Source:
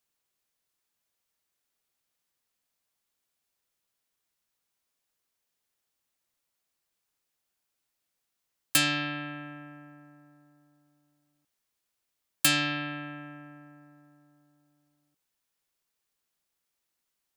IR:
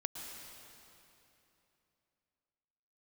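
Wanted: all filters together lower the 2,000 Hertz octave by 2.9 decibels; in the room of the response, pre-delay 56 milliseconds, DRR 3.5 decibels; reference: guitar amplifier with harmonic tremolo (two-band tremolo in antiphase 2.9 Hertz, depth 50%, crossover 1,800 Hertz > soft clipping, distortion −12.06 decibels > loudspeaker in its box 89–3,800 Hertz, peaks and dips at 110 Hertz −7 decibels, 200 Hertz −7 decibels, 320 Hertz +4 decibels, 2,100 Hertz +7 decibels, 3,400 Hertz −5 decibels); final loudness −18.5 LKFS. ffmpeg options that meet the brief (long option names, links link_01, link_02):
-filter_complex "[0:a]equalizer=frequency=2000:width_type=o:gain=-6,asplit=2[link_01][link_02];[1:a]atrim=start_sample=2205,adelay=56[link_03];[link_02][link_03]afir=irnorm=-1:irlink=0,volume=-3.5dB[link_04];[link_01][link_04]amix=inputs=2:normalize=0,acrossover=split=1800[link_05][link_06];[link_05]aeval=exprs='val(0)*(1-0.5/2+0.5/2*cos(2*PI*2.9*n/s))':channel_layout=same[link_07];[link_06]aeval=exprs='val(0)*(1-0.5/2-0.5/2*cos(2*PI*2.9*n/s))':channel_layout=same[link_08];[link_07][link_08]amix=inputs=2:normalize=0,asoftclip=threshold=-22dB,highpass=89,equalizer=frequency=110:width_type=q:width=4:gain=-7,equalizer=frequency=200:width_type=q:width=4:gain=-7,equalizer=frequency=320:width_type=q:width=4:gain=4,equalizer=frequency=2100:width_type=q:width=4:gain=7,equalizer=frequency=3400:width_type=q:width=4:gain=-5,lowpass=frequency=3800:width=0.5412,lowpass=frequency=3800:width=1.3066,volume=18dB"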